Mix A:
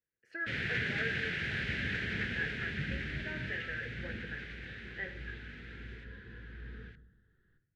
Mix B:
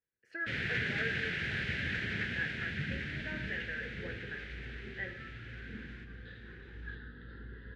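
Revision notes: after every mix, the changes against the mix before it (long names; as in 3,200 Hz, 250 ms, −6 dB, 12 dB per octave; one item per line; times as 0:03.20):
second sound: entry +1.60 s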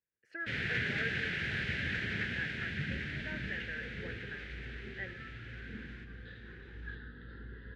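speech: send −11.0 dB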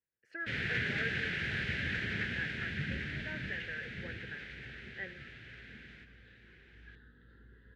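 second sound −11.0 dB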